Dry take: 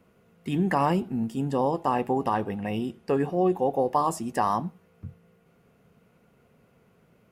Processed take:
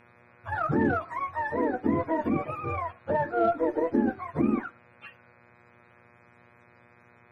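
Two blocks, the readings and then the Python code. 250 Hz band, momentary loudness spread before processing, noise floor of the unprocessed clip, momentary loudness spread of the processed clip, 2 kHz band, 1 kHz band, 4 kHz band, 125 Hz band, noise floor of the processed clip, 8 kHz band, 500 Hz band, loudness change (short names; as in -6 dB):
0.0 dB, 15 LU, -63 dBFS, 8 LU, +3.5 dB, -3.5 dB, under -10 dB, -4.5 dB, -59 dBFS, under -20 dB, -1.5 dB, -1.5 dB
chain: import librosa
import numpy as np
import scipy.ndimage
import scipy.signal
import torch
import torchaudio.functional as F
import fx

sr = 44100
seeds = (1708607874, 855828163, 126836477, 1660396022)

y = fx.octave_mirror(x, sr, pivot_hz=500.0)
y = fx.cheby_harmonics(y, sr, harmonics=(6,), levels_db=(-33,), full_scale_db=-13.0)
y = fx.dmg_buzz(y, sr, base_hz=120.0, harmonics=21, level_db=-59.0, tilt_db=-1, odd_only=False)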